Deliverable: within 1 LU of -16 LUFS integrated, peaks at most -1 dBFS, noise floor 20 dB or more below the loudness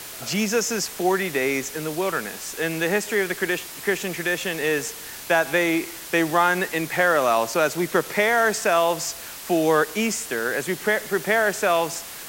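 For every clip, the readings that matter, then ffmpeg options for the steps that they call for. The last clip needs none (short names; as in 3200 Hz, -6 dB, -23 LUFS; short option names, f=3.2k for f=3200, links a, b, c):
noise floor -37 dBFS; noise floor target -43 dBFS; loudness -22.5 LUFS; peak -6.0 dBFS; loudness target -16.0 LUFS
-> -af "afftdn=nr=6:nf=-37"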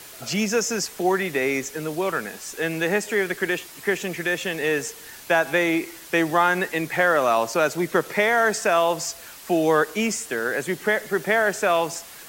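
noise floor -43 dBFS; loudness -23.0 LUFS; peak -6.5 dBFS; loudness target -16.0 LUFS
-> -af "volume=7dB,alimiter=limit=-1dB:level=0:latency=1"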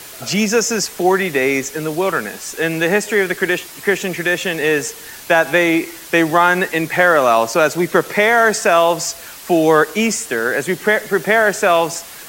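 loudness -16.0 LUFS; peak -1.0 dBFS; noise floor -36 dBFS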